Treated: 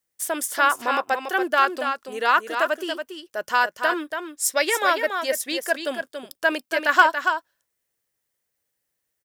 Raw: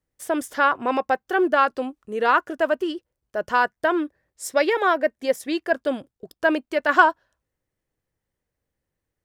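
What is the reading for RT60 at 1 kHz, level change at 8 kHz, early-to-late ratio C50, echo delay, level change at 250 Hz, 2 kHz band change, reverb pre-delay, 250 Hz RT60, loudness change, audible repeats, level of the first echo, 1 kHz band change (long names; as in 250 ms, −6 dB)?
no reverb audible, +10.5 dB, no reverb audible, 282 ms, −6.0 dB, +2.0 dB, no reverb audible, no reverb audible, −0.5 dB, 1, −7.0 dB, 0.0 dB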